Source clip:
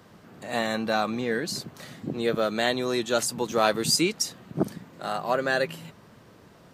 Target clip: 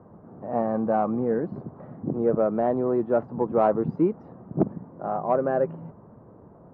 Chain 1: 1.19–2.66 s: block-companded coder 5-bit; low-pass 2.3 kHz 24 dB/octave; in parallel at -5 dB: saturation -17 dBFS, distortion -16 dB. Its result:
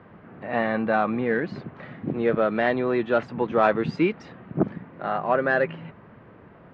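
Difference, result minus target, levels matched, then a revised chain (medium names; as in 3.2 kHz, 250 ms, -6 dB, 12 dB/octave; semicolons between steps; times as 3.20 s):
2 kHz band +15.5 dB
1.19–2.66 s: block-companded coder 5-bit; low-pass 1 kHz 24 dB/octave; in parallel at -5 dB: saturation -17 dBFS, distortion -19 dB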